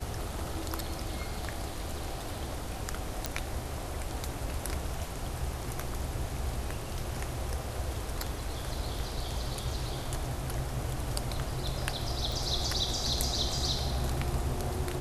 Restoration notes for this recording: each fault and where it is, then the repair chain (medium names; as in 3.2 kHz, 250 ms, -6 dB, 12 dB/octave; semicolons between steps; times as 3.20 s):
3.26 s: pop -13 dBFS
12.32 s: pop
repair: de-click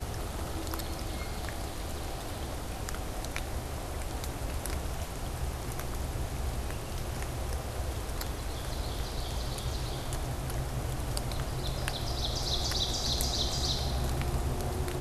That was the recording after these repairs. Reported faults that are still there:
12.32 s: pop